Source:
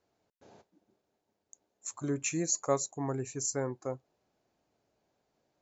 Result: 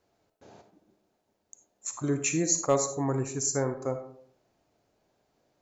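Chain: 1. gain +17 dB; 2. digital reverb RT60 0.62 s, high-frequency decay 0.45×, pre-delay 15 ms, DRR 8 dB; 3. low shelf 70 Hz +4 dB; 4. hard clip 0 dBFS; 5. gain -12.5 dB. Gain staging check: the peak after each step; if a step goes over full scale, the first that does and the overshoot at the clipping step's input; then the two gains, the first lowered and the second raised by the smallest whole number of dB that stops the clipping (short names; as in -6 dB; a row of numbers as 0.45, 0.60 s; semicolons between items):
+3.0, +3.0, +3.0, 0.0, -12.5 dBFS; step 1, 3.0 dB; step 1 +14 dB, step 5 -9.5 dB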